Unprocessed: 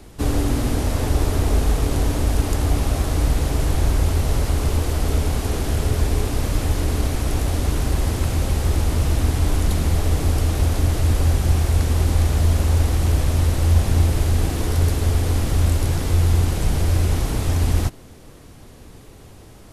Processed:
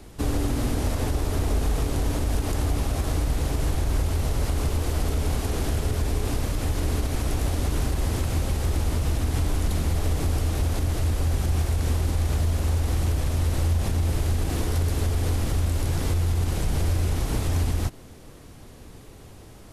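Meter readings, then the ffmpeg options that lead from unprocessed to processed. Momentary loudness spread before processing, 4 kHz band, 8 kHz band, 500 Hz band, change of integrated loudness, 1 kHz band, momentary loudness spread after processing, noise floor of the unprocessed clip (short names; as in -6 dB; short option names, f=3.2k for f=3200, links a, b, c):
4 LU, -4.5 dB, -4.5 dB, -4.5 dB, -5.0 dB, -4.5 dB, 2 LU, -43 dBFS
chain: -af "alimiter=limit=-13.5dB:level=0:latency=1:release=91,volume=-2dB"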